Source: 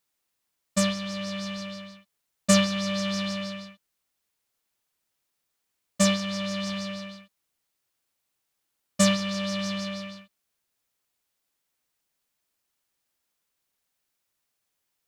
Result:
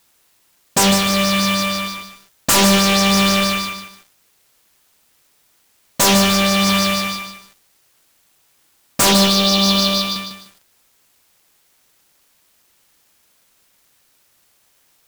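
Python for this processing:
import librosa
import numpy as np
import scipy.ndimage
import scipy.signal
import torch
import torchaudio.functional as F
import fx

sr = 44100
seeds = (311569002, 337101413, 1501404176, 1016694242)

y = fx.fold_sine(x, sr, drive_db=18, ceiling_db=-5.5)
y = fx.quant_companded(y, sr, bits=4)
y = fx.graphic_eq(y, sr, hz=(125, 250, 2000, 4000, 8000), db=(-9, 4, -12, 10, -7), at=(9.12, 10.16))
y = fx.echo_crushed(y, sr, ms=150, feedback_pct=35, bits=6, wet_db=-6.5)
y = y * 10.0 ** (-4.0 / 20.0)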